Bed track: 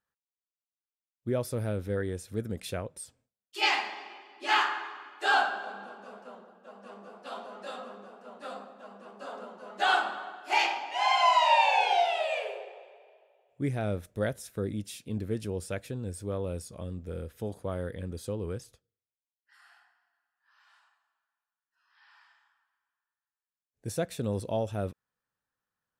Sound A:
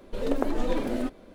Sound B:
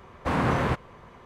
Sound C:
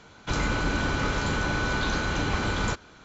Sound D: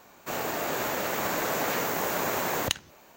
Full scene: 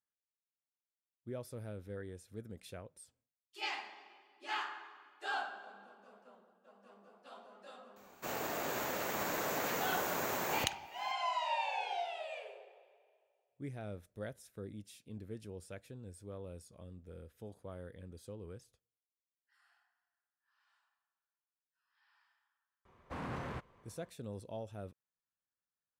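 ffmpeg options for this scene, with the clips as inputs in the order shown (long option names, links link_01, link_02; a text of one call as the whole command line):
ffmpeg -i bed.wav -i cue0.wav -i cue1.wav -i cue2.wav -i cue3.wav -filter_complex "[0:a]volume=-13.5dB[link_01];[2:a]aeval=exprs='0.15*(abs(mod(val(0)/0.15+3,4)-2)-1)':channel_layout=same[link_02];[4:a]atrim=end=3.16,asetpts=PTS-STARTPTS,volume=-8dB,afade=type=in:duration=0.004:curve=hsin,afade=type=out:start_time=3.156:duration=0.004:curve=hsin,adelay=7960[link_03];[link_02]atrim=end=1.25,asetpts=PTS-STARTPTS,volume=-17dB,afade=type=in:duration=0.004:curve=hsin,afade=type=out:start_time=1.246:duration=0.004:curve=hsin,adelay=22850[link_04];[link_01][link_03][link_04]amix=inputs=3:normalize=0" out.wav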